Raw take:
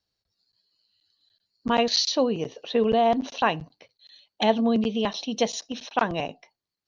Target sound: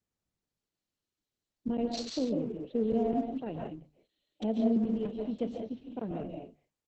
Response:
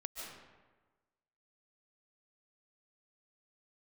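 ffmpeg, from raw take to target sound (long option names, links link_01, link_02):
-filter_complex "[0:a]firequalizer=gain_entry='entry(320,0);entry(1100,-27);entry(3000,-14)':delay=0.05:min_phase=1,acrossover=split=550|2700[link_01][link_02][link_03];[link_03]acrusher=bits=5:mix=0:aa=0.000001[link_04];[link_01][link_02][link_04]amix=inputs=3:normalize=0,bandreject=frequency=50:width_type=h:width=6,bandreject=frequency=100:width_type=h:width=6,bandreject=frequency=150:width_type=h:width=6[link_05];[1:a]atrim=start_sample=2205,afade=type=out:start_time=0.26:duration=0.01,atrim=end_sample=11907[link_06];[link_05][link_06]afir=irnorm=-1:irlink=0" -ar 48000 -c:a libopus -b:a 10k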